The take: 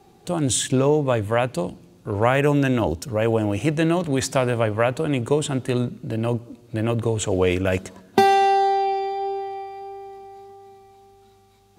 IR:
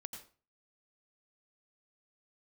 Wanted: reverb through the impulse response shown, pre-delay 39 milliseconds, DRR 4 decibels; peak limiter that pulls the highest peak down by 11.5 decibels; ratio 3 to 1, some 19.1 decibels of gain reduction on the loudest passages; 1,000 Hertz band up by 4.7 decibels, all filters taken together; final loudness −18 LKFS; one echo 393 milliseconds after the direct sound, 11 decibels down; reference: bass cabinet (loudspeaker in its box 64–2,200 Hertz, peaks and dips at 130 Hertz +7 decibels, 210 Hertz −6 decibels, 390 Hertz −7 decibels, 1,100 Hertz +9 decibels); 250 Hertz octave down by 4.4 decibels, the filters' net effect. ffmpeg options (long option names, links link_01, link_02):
-filter_complex "[0:a]equalizer=frequency=250:width_type=o:gain=-4,equalizer=frequency=1000:width_type=o:gain=4.5,acompressor=threshold=-38dB:ratio=3,alimiter=level_in=4dB:limit=-24dB:level=0:latency=1,volume=-4dB,aecho=1:1:393:0.282,asplit=2[link_01][link_02];[1:a]atrim=start_sample=2205,adelay=39[link_03];[link_02][link_03]afir=irnorm=-1:irlink=0,volume=-0.5dB[link_04];[link_01][link_04]amix=inputs=2:normalize=0,highpass=frequency=64:width=0.5412,highpass=frequency=64:width=1.3066,equalizer=frequency=130:width_type=q:width=4:gain=7,equalizer=frequency=210:width_type=q:width=4:gain=-6,equalizer=frequency=390:width_type=q:width=4:gain=-7,equalizer=frequency=1100:width_type=q:width=4:gain=9,lowpass=frequency=2200:width=0.5412,lowpass=frequency=2200:width=1.3066,volume=20dB"